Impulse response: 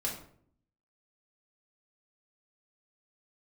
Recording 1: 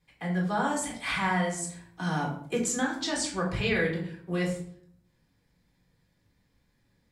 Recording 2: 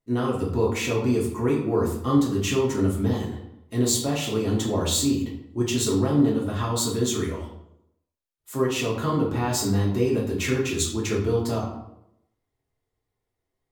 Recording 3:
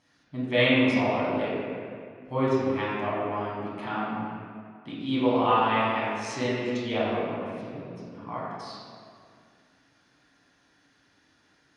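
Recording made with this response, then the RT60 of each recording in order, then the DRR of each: 1; 0.60 s, 0.80 s, 2.2 s; -3.0 dB, -5.0 dB, -9.5 dB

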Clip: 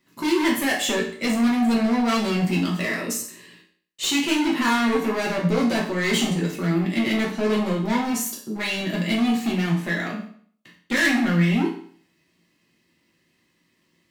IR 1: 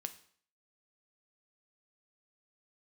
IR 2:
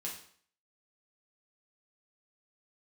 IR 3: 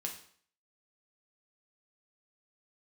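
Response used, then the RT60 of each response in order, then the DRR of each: 2; 0.55 s, 0.55 s, 0.55 s; 8.5 dB, -3.5 dB, 1.0 dB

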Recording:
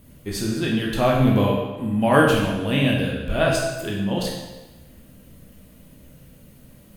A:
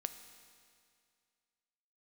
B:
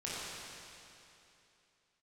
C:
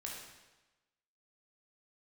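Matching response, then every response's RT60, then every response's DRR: C; 2.2 s, 2.9 s, 1.1 s; 9.0 dB, -9.0 dB, -3.0 dB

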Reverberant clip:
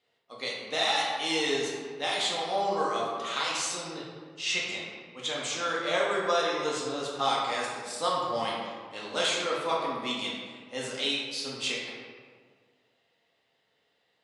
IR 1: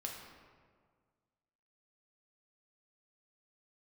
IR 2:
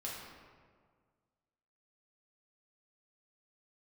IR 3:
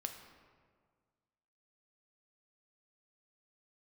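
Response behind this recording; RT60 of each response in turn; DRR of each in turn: 2; 1.8 s, 1.8 s, 1.8 s; -0.5 dB, -5.5 dB, 4.5 dB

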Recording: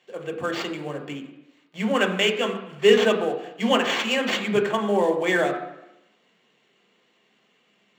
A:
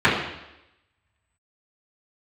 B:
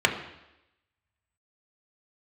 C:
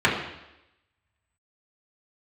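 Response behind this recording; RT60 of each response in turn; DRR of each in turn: B; 0.90 s, 0.90 s, 0.90 s; -13.5 dB, 2.0 dB, -6.5 dB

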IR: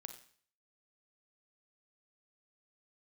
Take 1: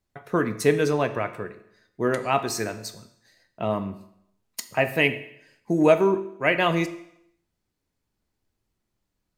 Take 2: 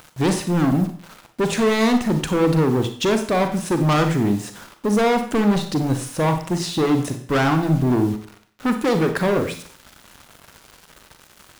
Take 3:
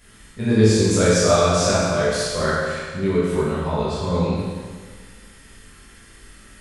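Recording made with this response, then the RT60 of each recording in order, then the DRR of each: 2; 0.75 s, 0.50 s, 1.6 s; 9.5 dB, 7.0 dB, -10.5 dB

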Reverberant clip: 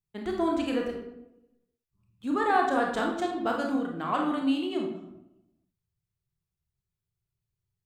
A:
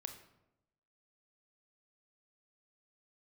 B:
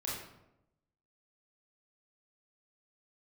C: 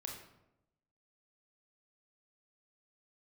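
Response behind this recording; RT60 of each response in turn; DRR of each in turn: C; 0.90 s, 0.90 s, 0.90 s; 6.0 dB, -6.0 dB, 0.0 dB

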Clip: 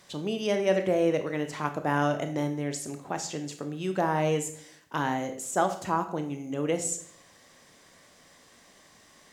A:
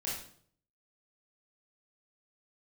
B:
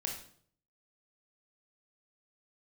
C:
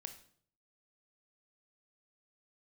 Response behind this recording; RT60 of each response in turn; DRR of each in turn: C; 0.55 s, 0.55 s, 0.55 s; -7.0 dB, 0.5 dB, 7.0 dB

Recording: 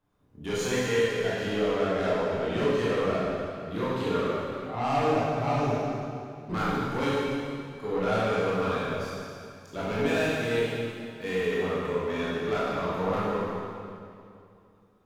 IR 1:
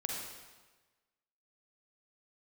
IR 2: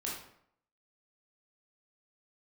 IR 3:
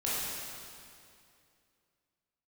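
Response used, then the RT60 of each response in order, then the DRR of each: 3; 1.3 s, 0.70 s, 2.5 s; -1.0 dB, -5.0 dB, -9.0 dB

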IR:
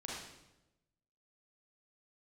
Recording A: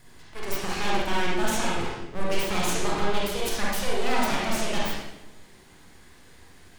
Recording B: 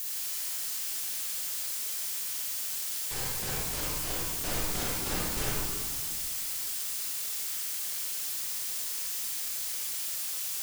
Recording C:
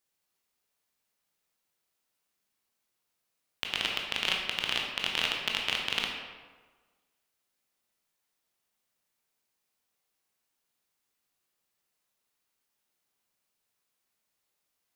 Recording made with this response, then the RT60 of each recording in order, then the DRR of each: A; 0.95 s, 1.9 s, 1.4 s; -5.0 dB, -7.5 dB, -0.5 dB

